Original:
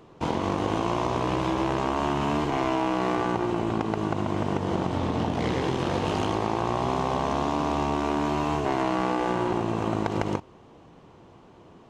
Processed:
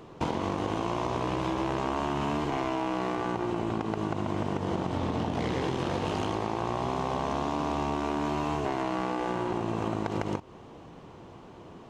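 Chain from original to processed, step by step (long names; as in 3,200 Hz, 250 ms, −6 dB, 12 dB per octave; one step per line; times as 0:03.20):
downward compressor 5 to 1, threshold −30 dBFS, peak gain reduction 9.5 dB
level +3.5 dB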